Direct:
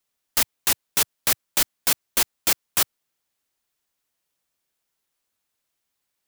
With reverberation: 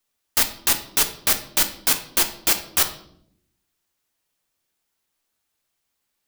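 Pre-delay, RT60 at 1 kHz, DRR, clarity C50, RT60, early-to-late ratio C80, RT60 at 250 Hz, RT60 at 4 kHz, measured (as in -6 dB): 3 ms, 0.55 s, 6.5 dB, 11.5 dB, 0.70 s, 15.0 dB, 1.1 s, 0.50 s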